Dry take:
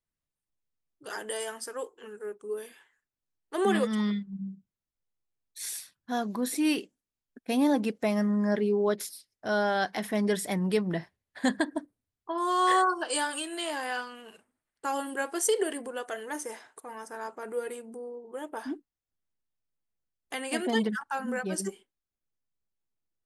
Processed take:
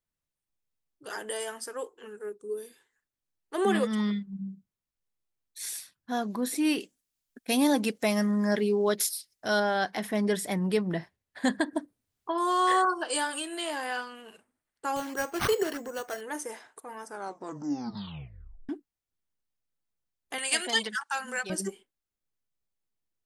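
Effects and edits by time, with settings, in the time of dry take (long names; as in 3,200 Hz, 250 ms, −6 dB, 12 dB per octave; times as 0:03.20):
0:02.29–0:02.95: gain on a spectral selection 530–3,500 Hz −9 dB
0:06.80–0:09.60: high-shelf EQ 2,500 Hz +11 dB
0:11.73–0:12.85: multiband upward and downward compressor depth 40%
0:14.96–0:16.21: bad sample-rate conversion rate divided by 6×, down none, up hold
0:17.05: tape stop 1.64 s
0:20.38–0:21.50: meter weighting curve ITU-R 468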